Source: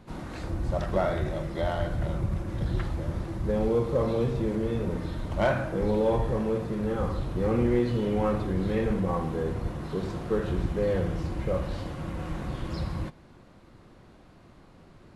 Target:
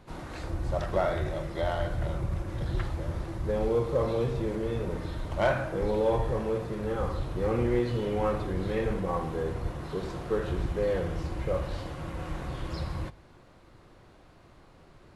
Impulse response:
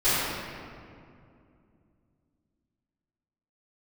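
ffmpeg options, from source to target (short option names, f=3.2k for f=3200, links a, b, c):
-af "equalizer=f=210:t=o:w=0.95:g=-7,bandreject=f=50:t=h:w=6,bandreject=f=100:t=h:w=6"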